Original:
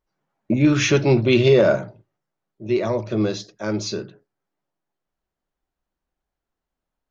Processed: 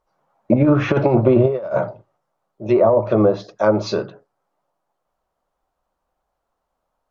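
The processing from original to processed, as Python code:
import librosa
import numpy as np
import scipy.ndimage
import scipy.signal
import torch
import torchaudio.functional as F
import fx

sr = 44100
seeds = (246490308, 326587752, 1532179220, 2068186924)

y = fx.band_shelf(x, sr, hz=800.0, db=10.5, octaves=1.7)
y = fx.over_compress(y, sr, threshold_db=-14.0, ratio=-0.5)
y = fx.env_lowpass_down(y, sr, base_hz=880.0, full_db=-10.5)
y = y * 10.0 ** (1.0 / 20.0)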